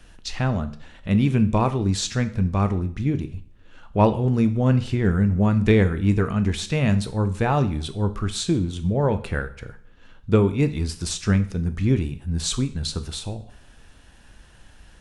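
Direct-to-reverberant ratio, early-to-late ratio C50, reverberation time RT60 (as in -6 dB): 9.5 dB, 15.0 dB, 0.55 s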